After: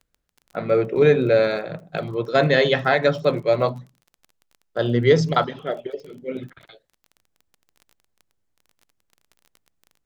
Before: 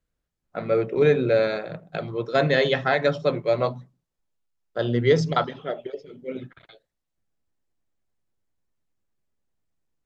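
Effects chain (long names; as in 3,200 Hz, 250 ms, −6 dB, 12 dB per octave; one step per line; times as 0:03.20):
surface crackle 20 per second −39 dBFS
level +3 dB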